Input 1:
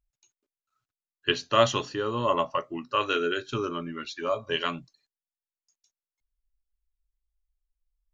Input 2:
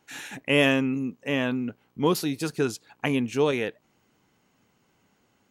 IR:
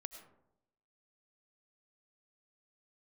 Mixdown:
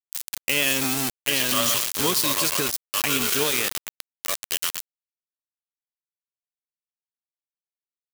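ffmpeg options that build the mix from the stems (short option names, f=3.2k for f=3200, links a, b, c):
-filter_complex "[0:a]volume=-6.5dB,asplit=2[a][b];[b]volume=-5.5dB[c];[1:a]lowpass=6.3k,adynamicequalizer=threshold=0.00355:dfrequency=4200:dqfactor=3.3:tfrequency=4200:tqfactor=3.3:attack=5:release=100:ratio=0.375:range=2:mode=boostabove:tftype=bell,acompressor=threshold=-29dB:ratio=1.5,volume=1.5dB[d];[c]aecho=0:1:115|230|345|460|575|690|805|920:1|0.55|0.303|0.166|0.0915|0.0503|0.0277|0.0152[e];[a][d][e]amix=inputs=3:normalize=0,aeval=exprs='val(0)*gte(abs(val(0)),0.0376)':c=same,crystalizer=i=8.5:c=0,alimiter=limit=-9.5dB:level=0:latency=1:release=84"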